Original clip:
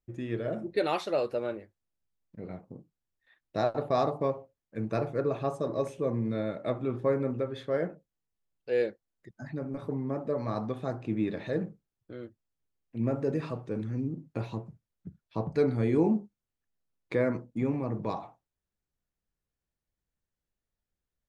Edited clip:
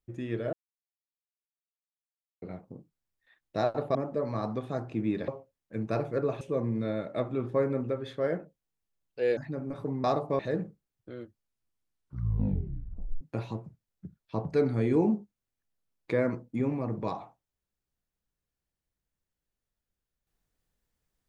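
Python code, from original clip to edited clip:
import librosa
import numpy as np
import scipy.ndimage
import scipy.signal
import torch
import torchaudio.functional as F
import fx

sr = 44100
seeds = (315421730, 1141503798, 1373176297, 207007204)

y = fx.edit(x, sr, fx.silence(start_s=0.53, length_s=1.89),
    fx.swap(start_s=3.95, length_s=0.35, other_s=10.08, other_length_s=1.33),
    fx.cut(start_s=5.43, length_s=0.48),
    fx.cut(start_s=8.87, length_s=0.54),
    fx.tape_stop(start_s=12.25, length_s=1.98), tone=tone)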